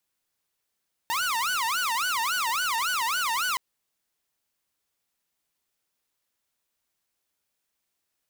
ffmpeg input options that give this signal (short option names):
-f lavfi -i "aevalsrc='0.0794*(2*mod((1199.5*t-300.5/(2*PI*3.6)*sin(2*PI*3.6*t)),1)-1)':d=2.47:s=44100"